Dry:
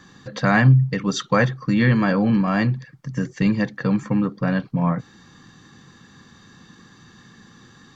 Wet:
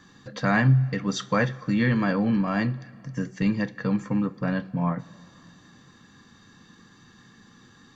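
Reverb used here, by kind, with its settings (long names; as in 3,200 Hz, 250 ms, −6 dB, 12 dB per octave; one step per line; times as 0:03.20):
coupled-rooms reverb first 0.24 s, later 2.7 s, from −18 dB, DRR 12 dB
level −5 dB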